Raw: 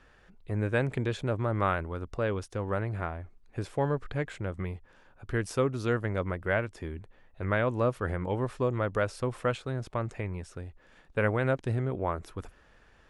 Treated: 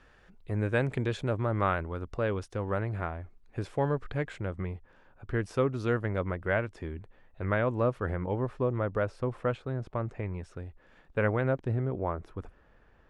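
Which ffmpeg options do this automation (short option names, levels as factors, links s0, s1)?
-af "asetnsamples=n=441:p=0,asendcmd='1.35 lowpass f 5200;4.53 lowpass f 2200;5.54 lowpass f 3500;7.54 lowpass f 2200;8.24 lowpass f 1300;10.23 lowpass f 2600;11.41 lowpass f 1200',lowpass=f=10000:p=1"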